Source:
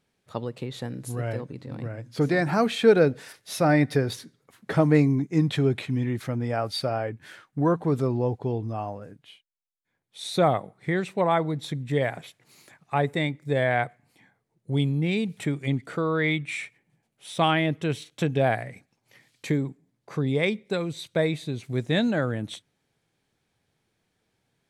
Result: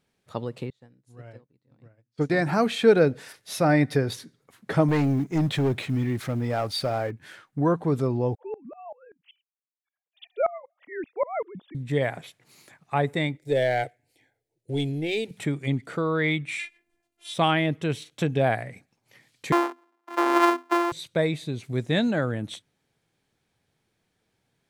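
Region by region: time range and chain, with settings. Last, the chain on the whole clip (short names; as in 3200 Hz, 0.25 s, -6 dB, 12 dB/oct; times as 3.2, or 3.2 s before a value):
0.7–2.3 Chebyshev low-pass 7400 Hz + upward expander 2.5:1, over -42 dBFS
4.88–7.11 G.711 law mismatch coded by mu + hard clip -18.5 dBFS
8.35–11.75 sine-wave speech + dB-ramp tremolo swelling 5.2 Hz, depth 23 dB
13.37–15.31 sample leveller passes 1 + fixed phaser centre 460 Hz, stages 4
16.59–17.34 dynamic EQ 3100 Hz, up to +8 dB, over -52 dBFS, Q 0.96 + robotiser 345 Hz
19.52–20.92 sample sorter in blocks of 128 samples + rippled Chebyshev high-pass 250 Hz, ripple 9 dB + bell 1200 Hz +12 dB 2.8 oct
whole clip: dry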